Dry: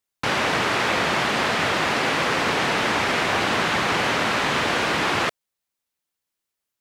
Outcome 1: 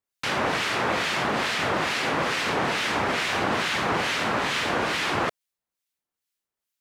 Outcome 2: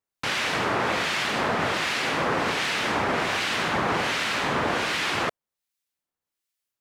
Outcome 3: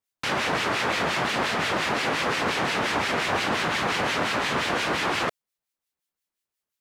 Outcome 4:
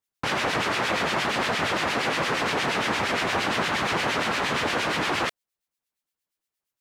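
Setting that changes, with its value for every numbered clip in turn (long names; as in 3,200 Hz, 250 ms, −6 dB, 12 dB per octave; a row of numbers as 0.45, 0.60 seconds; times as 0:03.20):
two-band tremolo in antiphase, speed: 2.3, 1.3, 5.7, 8.6 Hertz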